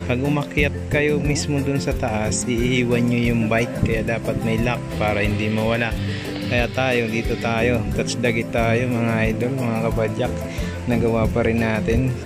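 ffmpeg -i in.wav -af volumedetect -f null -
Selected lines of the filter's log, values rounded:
mean_volume: -20.4 dB
max_volume: -4.2 dB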